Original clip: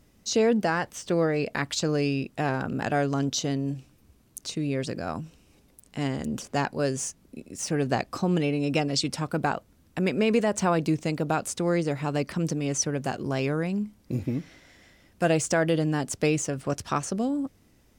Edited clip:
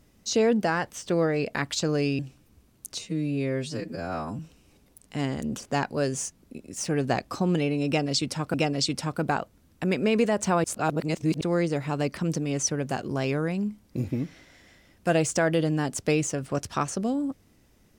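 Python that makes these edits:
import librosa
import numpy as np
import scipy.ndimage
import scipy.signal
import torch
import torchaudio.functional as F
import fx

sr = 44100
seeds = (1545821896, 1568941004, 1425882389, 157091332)

y = fx.edit(x, sr, fx.cut(start_s=2.19, length_s=1.52),
    fx.stretch_span(start_s=4.51, length_s=0.7, factor=2.0),
    fx.repeat(start_s=8.69, length_s=0.67, count=2),
    fx.reverse_span(start_s=10.79, length_s=0.77), tone=tone)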